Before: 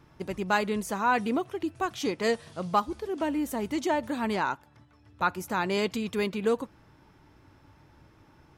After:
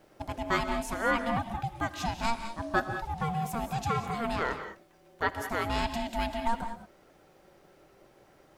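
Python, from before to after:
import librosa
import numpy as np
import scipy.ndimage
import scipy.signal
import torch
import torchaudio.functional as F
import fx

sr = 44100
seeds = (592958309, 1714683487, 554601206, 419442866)

y = x * np.sin(2.0 * np.pi * 460.0 * np.arange(len(x)) / sr)
y = fx.rev_gated(y, sr, seeds[0], gate_ms=230, shape='rising', drr_db=8.0)
y = fx.dmg_noise_colour(y, sr, seeds[1], colour='pink', level_db=-70.0)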